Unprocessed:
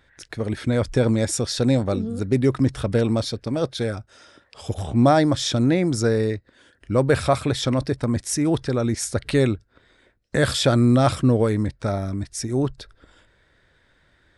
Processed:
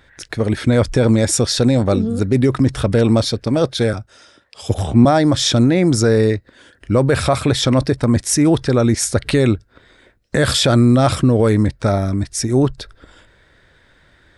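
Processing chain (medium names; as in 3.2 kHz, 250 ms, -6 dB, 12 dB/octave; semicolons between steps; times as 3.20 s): peak limiter -13.5 dBFS, peak gain reduction 7 dB; 3.93–5.05 s: three bands expanded up and down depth 40%; trim +8 dB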